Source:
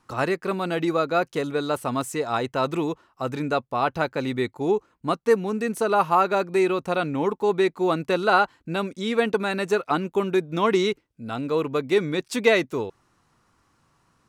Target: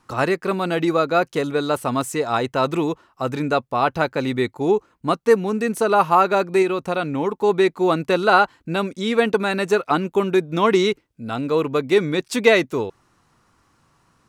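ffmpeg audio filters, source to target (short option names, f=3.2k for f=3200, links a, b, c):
-filter_complex "[0:a]asettb=1/sr,asplit=3[a][b][c];[a]atrim=end=6.624[d];[b]atrim=start=6.62:end=7.39,asetpts=PTS-STARTPTS,afade=t=in:d=0.004:c=qsin,afade=t=out:st=0.766:d=0.004:c=qsin,acompressor=threshold=-27dB:ratio=1.5[e];[c]atrim=start=7.386[f];[d][e]acrossfade=d=0.004:c1=hsin:c2=qsin[g];[g][f]acrossfade=d=0.004:c1=qsin:c2=hsin,volume=4dB"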